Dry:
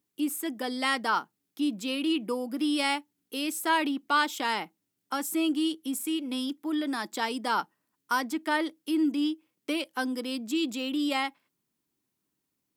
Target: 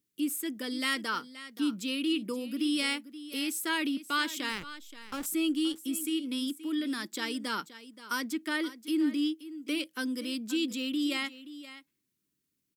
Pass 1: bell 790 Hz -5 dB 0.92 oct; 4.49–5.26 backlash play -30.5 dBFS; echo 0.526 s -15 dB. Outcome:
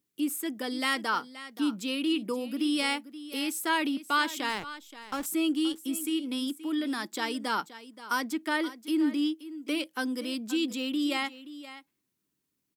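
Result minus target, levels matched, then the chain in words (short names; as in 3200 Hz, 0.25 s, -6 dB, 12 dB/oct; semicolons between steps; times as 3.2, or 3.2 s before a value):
1000 Hz band +4.5 dB
bell 790 Hz -16.5 dB 0.92 oct; 4.49–5.26 backlash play -30.5 dBFS; echo 0.526 s -15 dB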